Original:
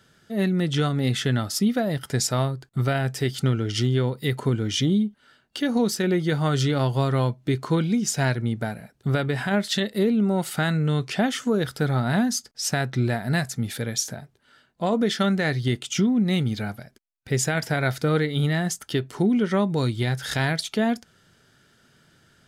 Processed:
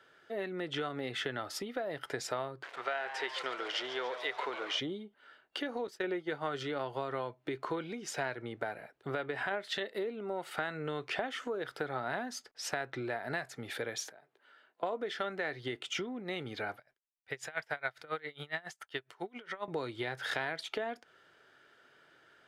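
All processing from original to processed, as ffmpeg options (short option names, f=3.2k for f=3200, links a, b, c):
-filter_complex "[0:a]asettb=1/sr,asplit=3[a][b][c];[a]atrim=end=2.634[d];[b]atrim=start=2.63:end=4.8,asetpts=PTS-STARTPTS,afade=t=in:d=0.004:c=qsin,afade=t=out:st=2.166:d=0.004:c=qsin,aeval=exprs='val(0)+0.5*0.0237*sgn(val(0))':c=same,highpass=650,lowpass=6.4k,asplit=9[e][f][g][h][i][j][k][l][m];[f]adelay=142,afreqshift=120,volume=-12.5dB[n];[g]adelay=284,afreqshift=240,volume=-16.4dB[o];[h]adelay=426,afreqshift=360,volume=-20.3dB[p];[i]adelay=568,afreqshift=480,volume=-24.1dB[q];[j]adelay=710,afreqshift=600,volume=-28dB[r];[k]adelay=852,afreqshift=720,volume=-31.9dB[s];[l]adelay=994,afreqshift=840,volume=-35.8dB[t];[m]adelay=1136,afreqshift=960,volume=-39.6dB[u];[e][n][o][p][q][r][s][t][u]amix=inputs=9:normalize=0,atrim=end_sample=95697[v];[c]atrim=start=4.796[w];[d][v]acrossfade=d=0.004:c1=hsin:c2=qsin[x];[x][w]acrossfade=d=0.004:c1=qsin:c2=hsin,asettb=1/sr,asplit=3[y][z][aa];[y]atrim=end=5.874[ab];[z]atrim=start=5.87:end=6.63,asetpts=PTS-STARTPTS,afade=t=in:d=0.004:c=qsin,afade=t=out:st=0.756:d=0.004:c=qsin,agate=range=-33dB:threshold=-20dB:ratio=3:release=100:detection=peak,acontrast=34[ac];[aa]atrim=start=6.626[ad];[ab][ac]acrossfade=d=0.004:c1=hsin:c2=qsin[ae];[ae][ad]acrossfade=d=0.004:c1=qsin:c2=hsin,asettb=1/sr,asplit=3[af][ag][ah];[af]atrim=end=14.094[ai];[ag]atrim=start=14.09:end=14.83,asetpts=PTS-STARTPTS,afade=t=in:d=0.004:c=qsin,afade=t=out:st=0.736:d=0.004:c=qsin,highpass=190,acompressor=threshold=-57dB:ratio=2.5:attack=3.2:release=140:knee=1:detection=peak[aj];[ah]atrim=start=14.826[ak];[ai][aj]acrossfade=d=0.004:c1=hsin:c2=qsin[al];[al][ak]acrossfade=d=0.004:c1=qsin:c2=hsin,asettb=1/sr,asplit=3[am][an][ao];[am]atrim=end=16.774[ap];[an]atrim=start=16.77:end=19.68,asetpts=PTS-STARTPTS,afade=t=in:d=0.004:c=qsin,afade=t=out:st=2.906:d=0.004:c=qsin,equalizer=f=310:t=o:w=1.9:g=-11,aeval=exprs='val(0)*pow(10,-25*(0.5-0.5*cos(2*PI*7.3*n/s))/20)':c=same[aq];[ao]atrim=start=19.676[ar];[ap][aq]acrossfade=d=0.004:c1=hsin:c2=qsin[as];[as][ar]acrossfade=d=0.004:c1=qsin:c2=hsin,acrossover=split=240 3200:gain=0.0891 1 0.158[at][au][av];[at][au][av]amix=inputs=3:normalize=0,acompressor=threshold=-31dB:ratio=6,equalizer=f=210:t=o:w=0.68:g=-12.5"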